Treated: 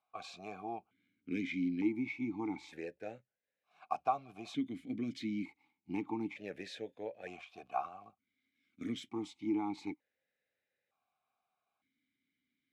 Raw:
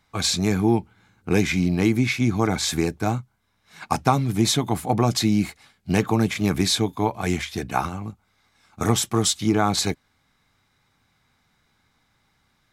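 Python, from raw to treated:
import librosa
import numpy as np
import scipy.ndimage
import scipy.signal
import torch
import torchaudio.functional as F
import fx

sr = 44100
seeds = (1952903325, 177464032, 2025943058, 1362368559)

y = fx.dmg_crackle(x, sr, seeds[0], per_s=170.0, level_db=-36.0, at=(7.64, 8.07), fade=0.02)
y = fx.vowel_held(y, sr, hz=1.1)
y = y * 10.0 ** (-6.0 / 20.0)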